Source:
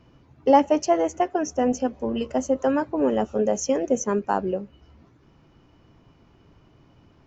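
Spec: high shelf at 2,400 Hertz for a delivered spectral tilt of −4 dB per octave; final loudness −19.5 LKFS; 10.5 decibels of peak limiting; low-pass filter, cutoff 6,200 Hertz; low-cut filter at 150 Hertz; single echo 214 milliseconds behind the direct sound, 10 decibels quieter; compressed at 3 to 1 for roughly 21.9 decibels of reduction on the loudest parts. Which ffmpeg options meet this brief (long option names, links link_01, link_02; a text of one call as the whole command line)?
ffmpeg -i in.wav -af "highpass=150,lowpass=6200,highshelf=frequency=2400:gain=6,acompressor=threshold=-41dB:ratio=3,alimiter=level_in=10dB:limit=-24dB:level=0:latency=1,volume=-10dB,aecho=1:1:214:0.316,volume=24dB" out.wav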